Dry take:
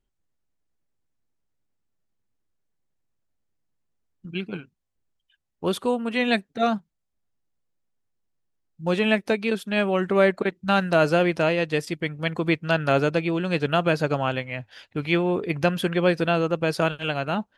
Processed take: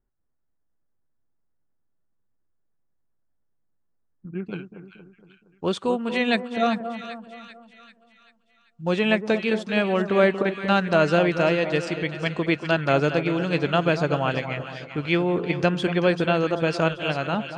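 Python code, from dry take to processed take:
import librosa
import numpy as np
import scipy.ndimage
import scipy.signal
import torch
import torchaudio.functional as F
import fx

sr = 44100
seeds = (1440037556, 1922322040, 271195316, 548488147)

y = fx.steep_lowpass(x, sr, hz=fx.steps((0.0, 1800.0), (4.45, 8100.0)), slope=36)
y = fx.echo_split(y, sr, split_hz=1300.0, low_ms=233, high_ms=390, feedback_pct=52, wet_db=-10)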